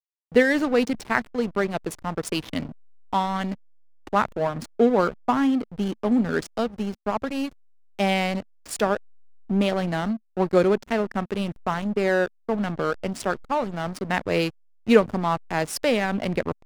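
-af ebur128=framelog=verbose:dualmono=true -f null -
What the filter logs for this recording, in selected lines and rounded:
Integrated loudness:
  I:         -21.7 LUFS
  Threshold: -32.0 LUFS
Loudness range:
  LRA:         3.3 LU
  Threshold: -42.4 LUFS
  LRA low:   -24.5 LUFS
  LRA high:  -21.2 LUFS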